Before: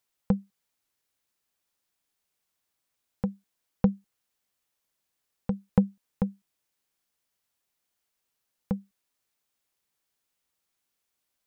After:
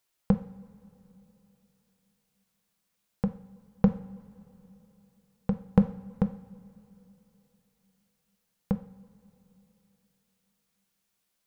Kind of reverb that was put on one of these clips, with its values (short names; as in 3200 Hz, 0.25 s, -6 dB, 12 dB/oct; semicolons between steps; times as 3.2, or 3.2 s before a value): two-slope reverb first 0.51 s, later 3.5 s, from -18 dB, DRR 8 dB; gain +2 dB